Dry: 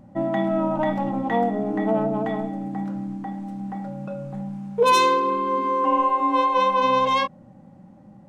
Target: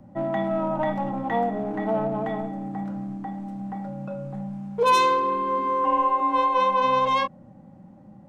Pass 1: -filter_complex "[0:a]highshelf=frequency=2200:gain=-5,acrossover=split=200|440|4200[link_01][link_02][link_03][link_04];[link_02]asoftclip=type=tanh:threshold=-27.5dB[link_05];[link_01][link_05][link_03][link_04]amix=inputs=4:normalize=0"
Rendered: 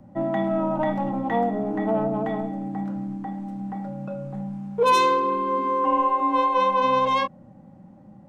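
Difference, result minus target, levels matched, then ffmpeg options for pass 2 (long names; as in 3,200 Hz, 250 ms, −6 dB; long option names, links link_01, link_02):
soft clipping: distortion −8 dB
-filter_complex "[0:a]highshelf=frequency=2200:gain=-5,acrossover=split=200|440|4200[link_01][link_02][link_03][link_04];[link_02]asoftclip=type=tanh:threshold=-38.5dB[link_05];[link_01][link_05][link_03][link_04]amix=inputs=4:normalize=0"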